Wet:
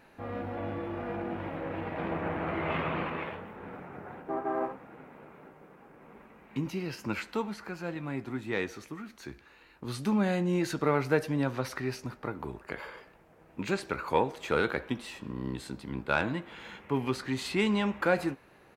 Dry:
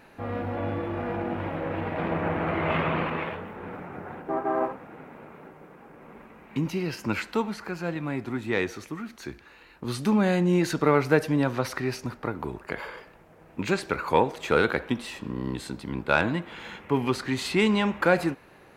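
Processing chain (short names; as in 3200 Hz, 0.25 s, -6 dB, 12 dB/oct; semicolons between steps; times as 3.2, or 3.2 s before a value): doubler 15 ms -13 dB; gain -5.5 dB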